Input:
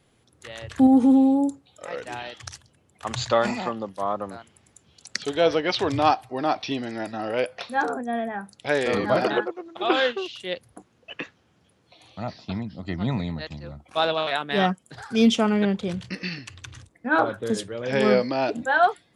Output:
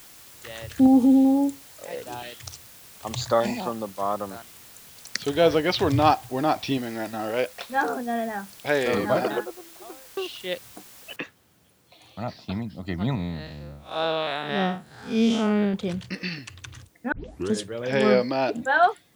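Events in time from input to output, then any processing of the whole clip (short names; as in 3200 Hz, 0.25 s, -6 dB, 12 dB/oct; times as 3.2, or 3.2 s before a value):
0.66–3.75 stepped notch 5.1 Hz 960–2700 Hz
5.22–6.78 low shelf 170 Hz +10.5 dB
7.3–7.74 G.711 law mismatch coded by A
8.86–10.17 studio fade out
11.16 noise floor step -48 dB -66 dB
13.15–15.74 time blur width 0.143 s
17.12 tape start 0.41 s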